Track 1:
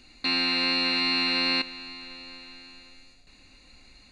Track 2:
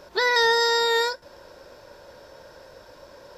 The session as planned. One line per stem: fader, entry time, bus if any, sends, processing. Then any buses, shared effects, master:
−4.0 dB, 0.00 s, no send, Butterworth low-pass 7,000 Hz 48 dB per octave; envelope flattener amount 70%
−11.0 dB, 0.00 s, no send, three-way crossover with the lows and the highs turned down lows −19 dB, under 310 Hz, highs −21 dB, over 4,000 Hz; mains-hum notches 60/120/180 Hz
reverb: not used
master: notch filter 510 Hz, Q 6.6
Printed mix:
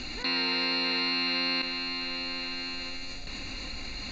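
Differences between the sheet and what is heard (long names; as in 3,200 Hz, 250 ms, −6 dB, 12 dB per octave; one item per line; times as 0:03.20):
stem 2 −11.0 dB → −19.5 dB
master: missing notch filter 510 Hz, Q 6.6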